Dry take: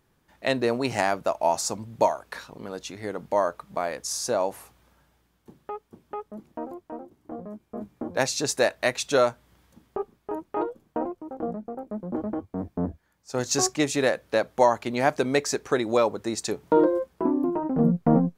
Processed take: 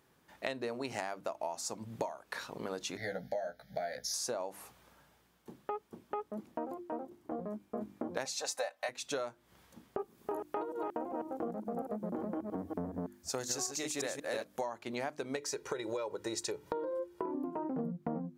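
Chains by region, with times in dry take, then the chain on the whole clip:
2.97–4.14 s: Butterworth band-stop 1 kHz, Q 2 + static phaser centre 1.8 kHz, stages 8 + doubling 16 ms -3.5 dB
8.25–8.89 s: resonant low shelf 450 Hz -12 dB, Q 3 + comb 3.9 ms, depth 70%
9.99–14.61 s: chunks repeated in reverse 183 ms, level -3 dB + treble shelf 5.6 kHz +10.5 dB
15.36–17.35 s: comb 2.1 ms, depth 71% + compression 3:1, threshold -22 dBFS
whole clip: high-pass 160 Hz 6 dB/octave; hum notches 50/100/150/200/250/300/350 Hz; compression 12:1, threshold -35 dBFS; trim +1 dB

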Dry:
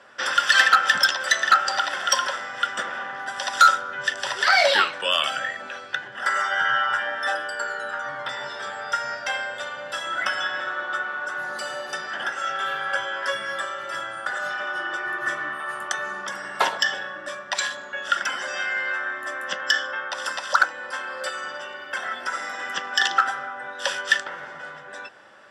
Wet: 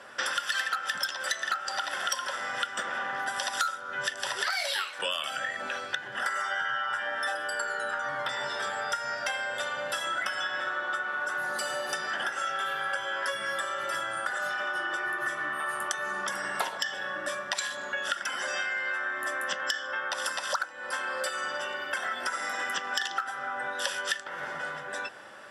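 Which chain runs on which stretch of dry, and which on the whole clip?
4.50–4.99 s: high-pass 1.2 kHz 6 dB/octave + treble shelf 8.2 kHz +9.5 dB
whole clip: peaking EQ 11 kHz +11 dB 0.61 oct; compression 6:1, threshold -31 dBFS; trim +2.5 dB

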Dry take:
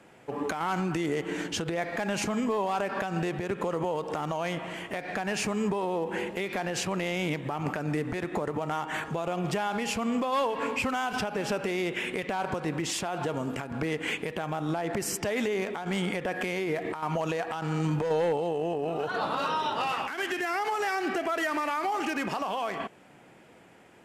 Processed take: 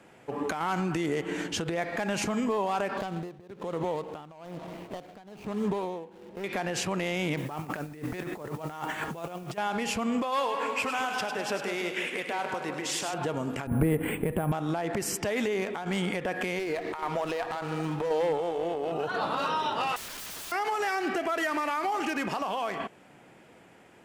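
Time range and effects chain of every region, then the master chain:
2.97–6.44 s: median filter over 25 samples + tremolo 1.1 Hz, depth 87%
7.37–9.58 s: compressor with a negative ratio -35 dBFS, ratio -0.5 + modulation noise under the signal 21 dB
10.22–13.14 s: high-pass 470 Hz 6 dB/octave + two-band feedback delay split 2.4 kHz, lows 160 ms, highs 102 ms, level -7 dB
13.67–14.52 s: low-pass 3.6 kHz + tilt EQ -3.5 dB/octave + careless resampling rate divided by 4×, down filtered, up hold
16.59–18.92 s: tone controls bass -7 dB, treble 0 dB + delay 394 ms -13.5 dB + sliding maximum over 5 samples
19.96–20.52 s: hum notches 60/120/180/240/300/360/420 Hz + integer overflow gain 35.5 dB
whole clip: none

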